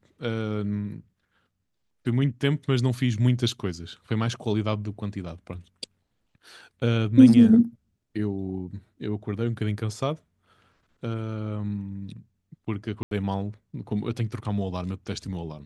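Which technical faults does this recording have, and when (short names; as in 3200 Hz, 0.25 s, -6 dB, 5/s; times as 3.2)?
13.03–13.11 gap 82 ms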